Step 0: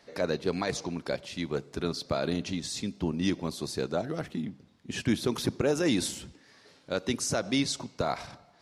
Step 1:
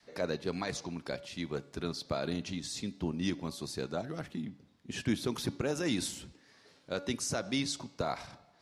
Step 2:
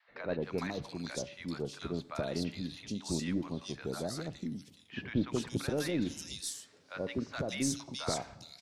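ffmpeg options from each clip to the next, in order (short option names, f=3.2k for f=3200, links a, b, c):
-af "bandreject=f=284.4:t=h:w=4,bandreject=f=568.8:t=h:w=4,bandreject=f=853.2:t=h:w=4,bandreject=f=1.1376k:t=h:w=4,bandreject=f=1.422k:t=h:w=4,bandreject=f=1.7064k:t=h:w=4,bandreject=f=1.9908k:t=h:w=4,bandreject=f=2.2752k:t=h:w=4,bandreject=f=2.5596k:t=h:w=4,bandreject=f=2.844k:t=h:w=4,bandreject=f=3.1284k:t=h:w=4,bandreject=f=3.4128k:t=h:w=4,bandreject=f=3.6972k:t=h:w=4,bandreject=f=3.9816k:t=h:w=4,bandreject=f=4.266k:t=h:w=4,bandreject=f=4.5504k:t=h:w=4,bandreject=f=4.8348k:t=h:w=4,adynamicequalizer=threshold=0.00794:dfrequency=460:dqfactor=1.2:tfrequency=460:tqfactor=1.2:attack=5:release=100:ratio=0.375:range=2.5:mode=cutabove:tftype=bell,volume=-4dB"
-filter_complex "[0:a]acrossover=split=830|3200[a][b][c];[a]adelay=80[d];[c]adelay=420[e];[d][b][e]amix=inputs=3:normalize=0,aeval=exprs='0.112*(cos(1*acos(clip(val(0)/0.112,-1,1)))-cos(1*PI/2))+0.0141*(cos(2*acos(clip(val(0)/0.112,-1,1)))-cos(2*PI/2))':c=same"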